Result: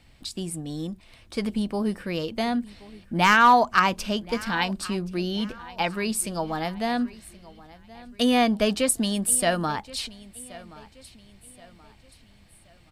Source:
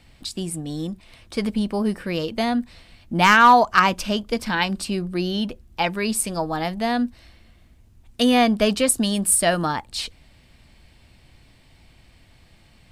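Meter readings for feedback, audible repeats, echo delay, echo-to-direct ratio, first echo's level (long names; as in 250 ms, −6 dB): 40%, 2, 1,076 ms, −19.5 dB, −20.0 dB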